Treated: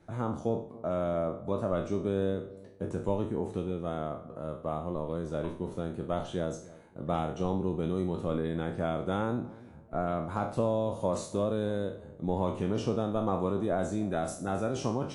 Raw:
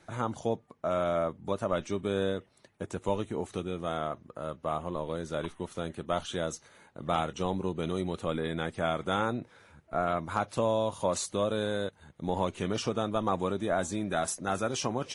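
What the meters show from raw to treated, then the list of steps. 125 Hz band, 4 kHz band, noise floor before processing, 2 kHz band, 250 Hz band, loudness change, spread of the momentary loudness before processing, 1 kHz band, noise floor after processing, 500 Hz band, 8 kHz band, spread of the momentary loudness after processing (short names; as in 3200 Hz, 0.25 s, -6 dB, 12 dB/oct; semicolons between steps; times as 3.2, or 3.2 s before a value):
+3.0 dB, -8.5 dB, -64 dBFS, -6.5 dB, +2.0 dB, -0.5 dB, 8 LU, -3.0 dB, -50 dBFS, 0.0 dB, -8.5 dB, 7 LU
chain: spectral trails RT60 0.46 s; tilt shelf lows +7 dB, about 880 Hz; analogue delay 0.286 s, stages 2048, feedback 33%, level -19.5 dB; gain -4.5 dB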